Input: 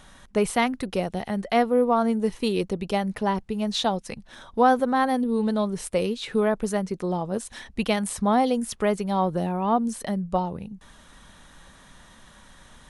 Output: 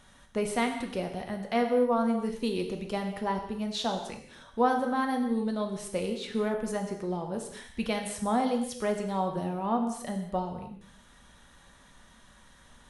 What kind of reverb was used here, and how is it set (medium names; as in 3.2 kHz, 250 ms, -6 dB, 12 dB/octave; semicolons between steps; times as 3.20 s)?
gated-style reverb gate 310 ms falling, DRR 3 dB; trim -7.5 dB